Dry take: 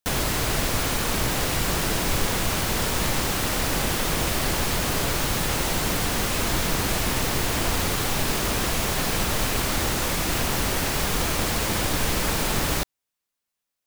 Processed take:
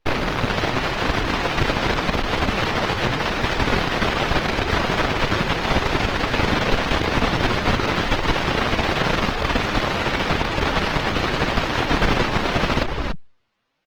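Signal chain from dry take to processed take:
half-wave rectification
high-shelf EQ 12,000 Hz −5.5 dB
on a send: single-tap delay 284 ms −15 dB
on the sum: flanger 0.85 Hz, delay 1.9 ms, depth 8.3 ms, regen +10%
in parallel at +1.5 dB: downward compressor 6 to 1, threshold −40 dBFS, peak gain reduction 17.5 dB
on the sum: sine wavefolder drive 17 dB, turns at −10.5 dBFS
high-frequency loss of the air 270 metres
Opus 20 kbit/s 48,000 Hz

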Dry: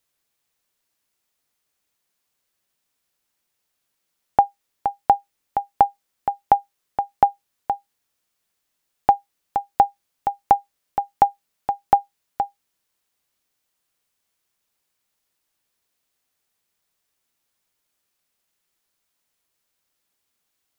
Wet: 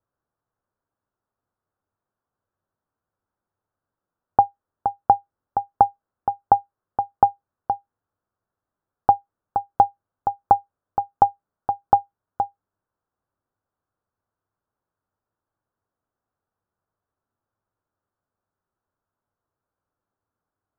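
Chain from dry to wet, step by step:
Butterworth low-pass 1,500 Hz 48 dB per octave
parametric band 99 Hz +10 dB 0.43 octaves

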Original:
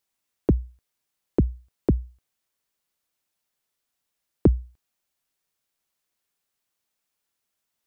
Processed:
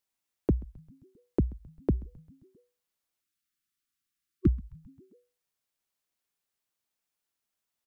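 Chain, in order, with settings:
time-frequency box erased 0:03.21–0:05.24, 380–1,100 Hz
echo with shifted repeats 132 ms, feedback 62%, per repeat −110 Hz, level −22 dB
level −5.5 dB

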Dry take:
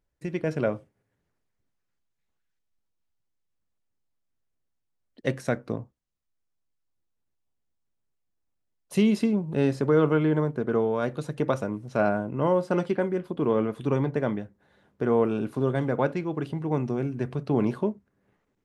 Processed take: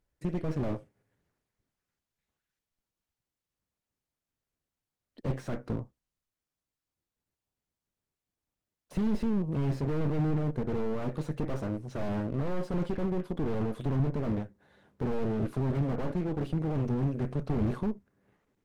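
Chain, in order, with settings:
harmonic generator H 8 −14 dB, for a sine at −10 dBFS
slew-rate limiting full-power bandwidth 13 Hz

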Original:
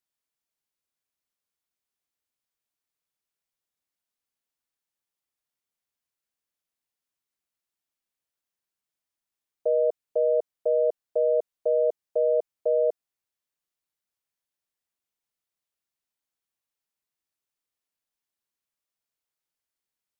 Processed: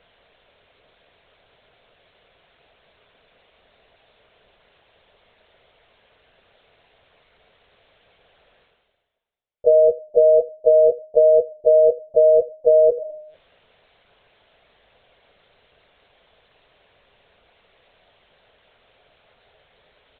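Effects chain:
low-shelf EQ 420 Hz −5.5 dB
single-tap delay 84 ms −22.5 dB
four-comb reverb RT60 0.44 s, combs from 30 ms, DRR 20 dB
linear-prediction vocoder at 8 kHz pitch kept
reversed playback
upward compression, threshold −33 dBFS
reversed playback
flat-topped bell 530 Hz +12 dB 1 octave

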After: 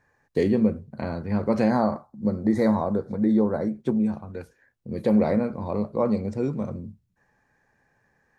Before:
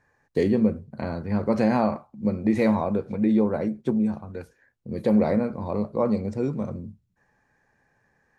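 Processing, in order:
0:01.70–0:03.68: Butterworth band-reject 2,700 Hz, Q 1.6

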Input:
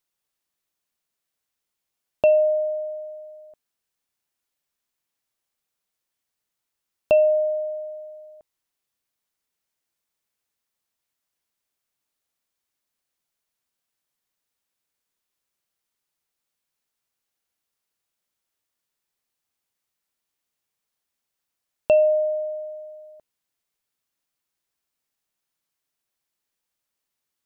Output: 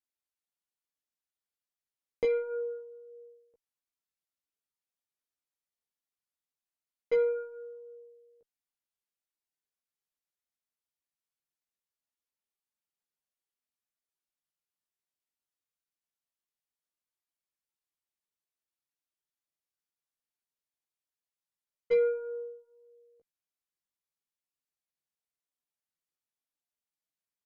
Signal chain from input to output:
pitch shifter −4.5 semitones
harmonic generator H 2 −27 dB, 7 −24 dB, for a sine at −8.5 dBFS
multi-voice chorus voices 6, 0.16 Hz, delay 16 ms, depth 4 ms
level −6.5 dB

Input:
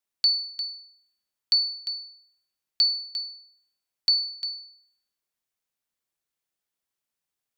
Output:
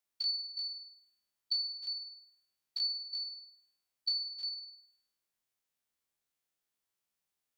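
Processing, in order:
spectrum averaged block by block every 50 ms
hum removal 315.8 Hz, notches 5
downward compressor 2 to 1, threshold −40 dBFS, peak gain reduction 11.5 dB

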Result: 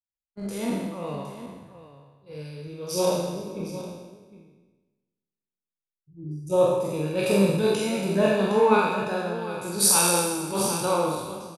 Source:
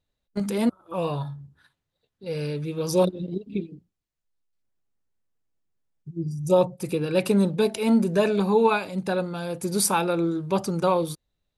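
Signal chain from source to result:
peak hold with a decay on every bin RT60 1.87 s
multi-tap delay 46/472/763 ms −4/−17.5/−8 dB
multiband upward and downward expander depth 70%
level −7 dB

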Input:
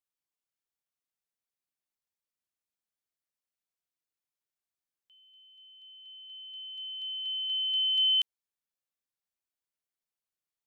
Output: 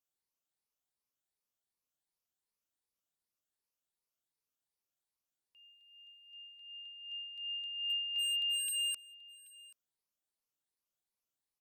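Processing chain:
rippled gain that drifts along the octave scale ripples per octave 0.87, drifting +2.9 Hz, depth 7 dB
parametric band 2,200 Hz −5.5 dB 1 octave
wave folding −30.5 dBFS
single-tap delay 718 ms −21 dB
wrong playback speed 48 kHz file played as 44.1 kHz

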